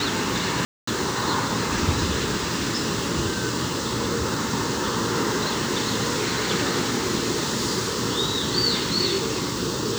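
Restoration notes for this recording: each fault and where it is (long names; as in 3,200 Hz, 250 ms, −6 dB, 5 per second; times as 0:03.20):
0:00.65–0:00.87: drop-out 224 ms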